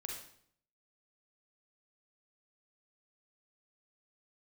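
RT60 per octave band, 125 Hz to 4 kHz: 0.80 s, 0.75 s, 0.65 s, 0.60 s, 0.55 s, 0.55 s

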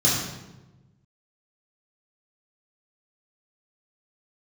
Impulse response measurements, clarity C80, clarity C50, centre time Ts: 3.5 dB, 0.5 dB, 67 ms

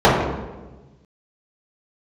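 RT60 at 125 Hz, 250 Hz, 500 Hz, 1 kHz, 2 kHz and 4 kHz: 1.8 s, 1.5 s, 1.3 s, 1.1 s, 0.95 s, 0.80 s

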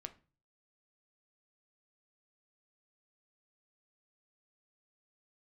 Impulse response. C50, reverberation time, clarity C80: 17.0 dB, 0.35 s, 22.5 dB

